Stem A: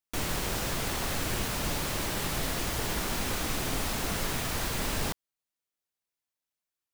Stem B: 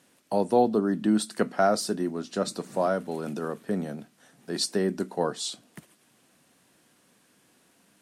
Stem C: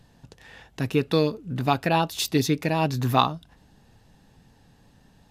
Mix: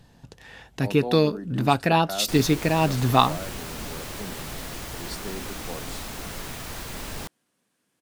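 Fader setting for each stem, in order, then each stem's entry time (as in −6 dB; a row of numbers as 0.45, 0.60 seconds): −4.0, −11.0, +2.0 decibels; 2.15, 0.50, 0.00 seconds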